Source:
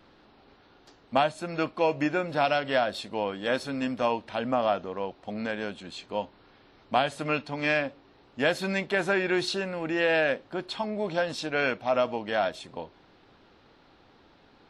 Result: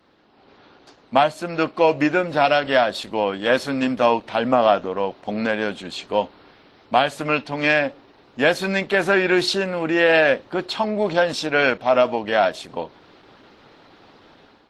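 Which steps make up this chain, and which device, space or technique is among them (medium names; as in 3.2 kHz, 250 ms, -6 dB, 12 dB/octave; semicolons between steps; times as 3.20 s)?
video call (high-pass 150 Hz 6 dB/octave; level rider gain up to 11 dB; Opus 16 kbps 48 kHz)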